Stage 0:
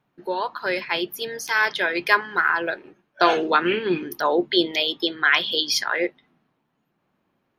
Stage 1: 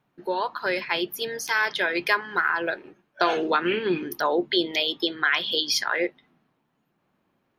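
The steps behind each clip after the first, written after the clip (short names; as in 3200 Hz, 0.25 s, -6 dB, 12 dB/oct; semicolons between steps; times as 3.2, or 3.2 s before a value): compressor 2:1, threshold -21 dBFS, peak gain reduction 6 dB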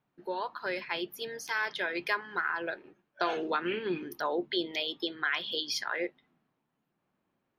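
high shelf 7100 Hz -4.5 dB; gain -8 dB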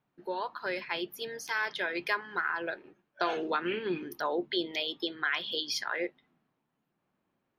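nothing audible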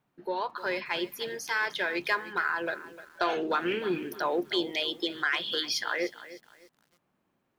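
in parallel at -6.5 dB: soft clip -26.5 dBFS, distortion -13 dB; on the sum: lo-fi delay 0.304 s, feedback 35%, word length 8-bit, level -15 dB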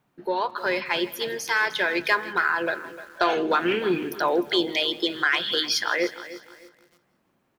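feedback echo 0.162 s, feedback 59%, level -20.5 dB; gain +6 dB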